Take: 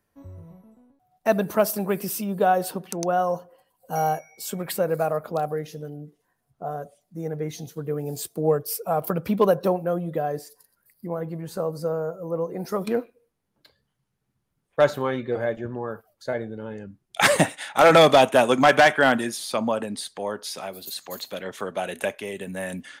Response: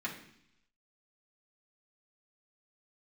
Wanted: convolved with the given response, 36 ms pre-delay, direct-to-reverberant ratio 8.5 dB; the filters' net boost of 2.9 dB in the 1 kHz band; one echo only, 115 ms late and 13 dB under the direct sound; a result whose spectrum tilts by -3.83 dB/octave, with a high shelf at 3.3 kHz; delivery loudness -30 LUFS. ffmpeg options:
-filter_complex "[0:a]equalizer=f=1000:t=o:g=3.5,highshelf=f=3300:g=8,aecho=1:1:115:0.224,asplit=2[s0][s1];[1:a]atrim=start_sample=2205,adelay=36[s2];[s1][s2]afir=irnorm=-1:irlink=0,volume=0.251[s3];[s0][s3]amix=inputs=2:normalize=0,volume=0.355"

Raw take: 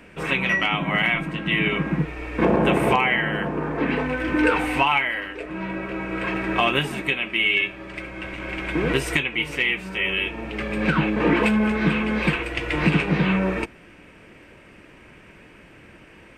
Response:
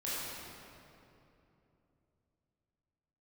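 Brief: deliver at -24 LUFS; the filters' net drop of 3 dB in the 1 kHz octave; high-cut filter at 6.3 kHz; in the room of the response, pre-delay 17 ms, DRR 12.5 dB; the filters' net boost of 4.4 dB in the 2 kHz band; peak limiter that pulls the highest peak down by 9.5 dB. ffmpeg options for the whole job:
-filter_complex "[0:a]lowpass=6300,equalizer=f=1000:t=o:g=-5.5,equalizer=f=2000:t=o:g=6.5,alimiter=limit=0.251:level=0:latency=1,asplit=2[s0][s1];[1:a]atrim=start_sample=2205,adelay=17[s2];[s1][s2]afir=irnorm=-1:irlink=0,volume=0.133[s3];[s0][s3]amix=inputs=2:normalize=0,volume=0.841"

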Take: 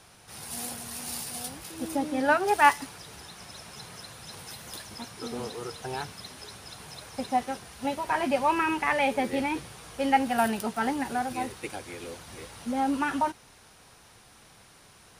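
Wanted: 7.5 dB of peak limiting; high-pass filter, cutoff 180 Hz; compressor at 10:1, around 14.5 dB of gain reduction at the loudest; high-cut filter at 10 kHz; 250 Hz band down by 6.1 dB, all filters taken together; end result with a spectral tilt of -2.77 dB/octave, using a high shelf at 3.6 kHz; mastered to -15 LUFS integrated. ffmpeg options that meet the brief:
-af "highpass=180,lowpass=10000,equalizer=f=250:t=o:g=-6,highshelf=f=3600:g=-4.5,acompressor=threshold=0.0355:ratio=10,volume=15.8,alimiter=limit=0.708:level=0:latency=1"

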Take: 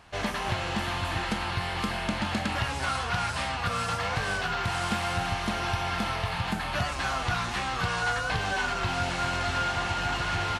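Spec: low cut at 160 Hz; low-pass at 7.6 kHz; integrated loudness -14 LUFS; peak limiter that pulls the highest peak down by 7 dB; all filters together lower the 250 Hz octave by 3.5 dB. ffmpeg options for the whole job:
-af "highpass=160,lowpass=7600,equalizer=f=250:t=o:g=-3,volume=7.94,alimiter=limit=0.531:level=0:latency=1"

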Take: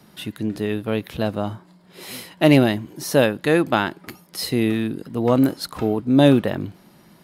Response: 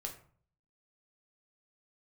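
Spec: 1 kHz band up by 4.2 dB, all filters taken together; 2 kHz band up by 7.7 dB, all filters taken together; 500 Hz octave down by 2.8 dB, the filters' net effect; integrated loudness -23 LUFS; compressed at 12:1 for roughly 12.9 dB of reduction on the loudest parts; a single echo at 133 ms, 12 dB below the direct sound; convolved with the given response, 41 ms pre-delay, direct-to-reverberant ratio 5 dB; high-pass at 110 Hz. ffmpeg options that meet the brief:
-filter_complex "[0:a]highpass=110,equalizer=f=500:t=o:g=-5.5,equalizer=f=1000:t=o:g=5.5,equalizer=f=2000:t=o:g=8.5,acompressor=threshold=0.0794:ratio=12,aecho=1:1:133:0.251,asplit=2[s0][s1];[1:a]atrim=start_sample=2205,adelay=41[s2];[s1][s2]afir=irnorm=-1:irlink=0,volume=0.668[s3];[s0][s3]amix=inputs=2:normalize=0,volume=1.68"

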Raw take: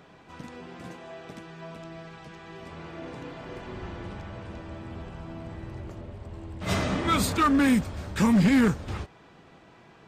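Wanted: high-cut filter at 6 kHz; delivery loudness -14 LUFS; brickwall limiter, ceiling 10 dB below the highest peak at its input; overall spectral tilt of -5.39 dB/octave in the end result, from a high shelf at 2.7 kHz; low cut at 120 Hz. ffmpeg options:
-af "highpass=120,lowpass=6000,highshelf=f=2700:g=-4.5,volume=11.9,alimiter=limit=0.944:level=0:latency=1"

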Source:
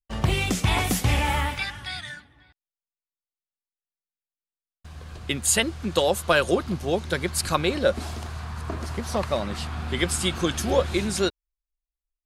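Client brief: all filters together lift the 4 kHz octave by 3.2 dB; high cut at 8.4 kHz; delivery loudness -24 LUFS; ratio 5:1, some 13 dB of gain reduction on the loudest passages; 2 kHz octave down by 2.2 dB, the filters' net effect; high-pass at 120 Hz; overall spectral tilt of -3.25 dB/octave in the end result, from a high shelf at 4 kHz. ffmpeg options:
-af "highpass=120,lowpass=8400,equalizer=f=2000:t=o:g=-5,highshelf=f=4000:g=3.5,equalizer=f=4000:t=o:g=4,acompressor=threshold=0.0282:ratio=5,volume=3.35"

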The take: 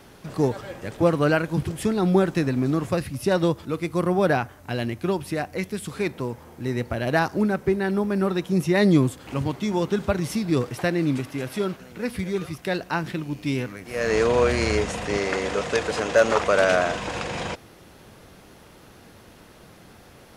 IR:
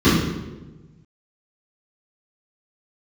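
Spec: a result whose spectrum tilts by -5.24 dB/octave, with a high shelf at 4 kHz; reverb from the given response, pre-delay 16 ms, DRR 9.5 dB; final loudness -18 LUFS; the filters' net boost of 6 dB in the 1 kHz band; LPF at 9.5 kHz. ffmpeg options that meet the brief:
-filter_complex "[0:a]lowpass=9500,equalizer=f=1000:t=o:g=8.5,highshelf=f=4000:g=-8,asplit=2[s0][s1];[1:a]atrim=start_sample=2205,adelay=16[s2];[s1][s2]afir=irnorm=-1:irlink=0,volume=0.0224[s3];[s0][s3]amix=inputs=2:normalize=0,volume=1.12"

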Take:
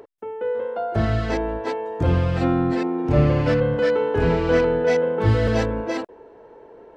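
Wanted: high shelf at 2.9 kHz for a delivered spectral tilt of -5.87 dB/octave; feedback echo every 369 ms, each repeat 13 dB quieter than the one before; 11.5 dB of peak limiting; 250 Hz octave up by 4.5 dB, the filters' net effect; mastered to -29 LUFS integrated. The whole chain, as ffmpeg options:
-af "equalizer=f=250:t=o:g=6,highshelf=f=2900:g=3.5,alimiter=limit=0.178:level=0:latency=1,aecho=1:1:369|738|1107:0.224|0.0493|0.0108,volume=0.531"

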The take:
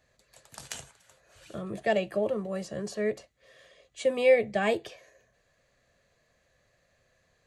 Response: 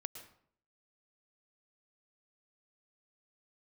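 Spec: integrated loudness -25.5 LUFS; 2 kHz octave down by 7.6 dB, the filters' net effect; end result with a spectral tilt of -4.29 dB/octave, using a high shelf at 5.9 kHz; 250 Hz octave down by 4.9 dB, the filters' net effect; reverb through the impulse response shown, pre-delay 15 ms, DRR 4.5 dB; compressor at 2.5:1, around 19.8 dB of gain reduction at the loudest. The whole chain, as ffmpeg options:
-filter_complex "[0:a]equalizer=f=250:t=o:g=-6.5,equalizer=f=2000:t=o:g=-8.5,highshelf=f=5900:g=-4.5,acompressor=threshold=0.00355:ratio=2.5,asplit=2[s0][s1];[1:a]atrim=start_sample=2205,adelay=15[s2];[s1][s2]afir=irnorm=-1:irlink=0,volume=0.794[s3];[s0][s3]amix=inputs=2:normalize=0,volume=10"

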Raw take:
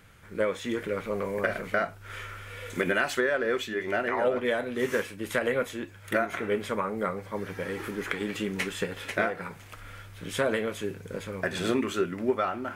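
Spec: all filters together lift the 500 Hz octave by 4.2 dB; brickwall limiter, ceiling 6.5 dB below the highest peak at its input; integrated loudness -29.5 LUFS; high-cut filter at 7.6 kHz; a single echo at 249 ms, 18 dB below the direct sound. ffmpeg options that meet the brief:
-af "lowpass=7600,equalizer=f=500:t=o:g=5,alimiter=limit=0.15:level=0:latency=1,aecho=1:1:249:0.126,volume=0.944"

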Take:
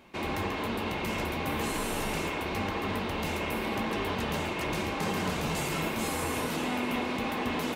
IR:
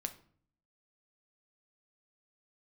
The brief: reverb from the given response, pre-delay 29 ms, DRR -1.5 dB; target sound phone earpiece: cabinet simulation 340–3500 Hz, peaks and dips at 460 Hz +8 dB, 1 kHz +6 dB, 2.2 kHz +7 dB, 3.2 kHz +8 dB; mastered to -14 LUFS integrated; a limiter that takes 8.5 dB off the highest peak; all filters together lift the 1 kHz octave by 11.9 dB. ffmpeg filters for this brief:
-filter_complex "[0:a]equalizer=f=1000:t=o:g=9,alimiter=limit=0.0668:level=0:latency=1,asplit=2[s0][s1];[1:a]atrim=start_sample=2205,adelay=29[s2];[s1][s2]afir=irnorm=-1:irlink=0,volume=1.33[s3];[s0][s3]amix=inputs=2:normalize=0,highpass=340,equalizer=f=460:t=q:w=4:g=8,equalizer=f=1000:t=q:w=4:g=6,equalizer=f=2200:t=q:w=4:g=7,equalizer=f=3200:t=q:w=4:g=8,lowpass=f=3500:w=0.5412,lowpass=f=3500:w=1.3066,volume=3.35"

